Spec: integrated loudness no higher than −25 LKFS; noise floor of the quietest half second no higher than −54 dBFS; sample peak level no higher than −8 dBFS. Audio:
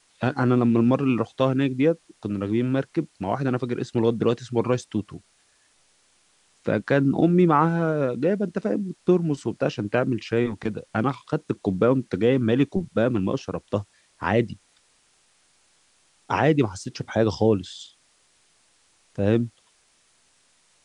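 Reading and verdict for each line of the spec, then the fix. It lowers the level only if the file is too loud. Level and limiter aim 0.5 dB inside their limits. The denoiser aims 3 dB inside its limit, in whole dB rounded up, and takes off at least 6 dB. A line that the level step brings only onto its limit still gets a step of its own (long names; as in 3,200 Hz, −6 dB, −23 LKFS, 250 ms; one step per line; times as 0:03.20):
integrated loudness −24.0 LKFS: out of spec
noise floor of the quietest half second −63 dBFS: in spec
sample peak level −6.0 dBFS: out of spec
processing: level −1.5 dB
brickwall limiter −8.5 dBFS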